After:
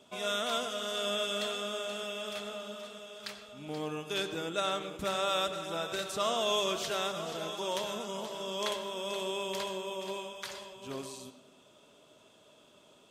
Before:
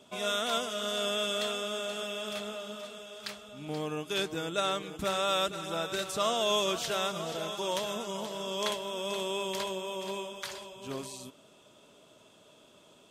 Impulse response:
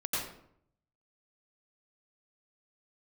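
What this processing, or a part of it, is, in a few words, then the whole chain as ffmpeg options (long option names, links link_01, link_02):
filtered reverb send: -filter_complex "[0:a]asplit=2[link_01][link_02];[link_02]highpass=frequency=150:width=0.5412,highpass=frequency=150:width=1.3066,lowpass=7800[link_03];[1:a]atrim=start_sample=2205[link_04];[link_03][link_04]afir=irnorm=-1:irlink=0,volume=-15dB[link_05];[link_01][link_05]amix=inputs=2:normalize=0,volume=-3dB"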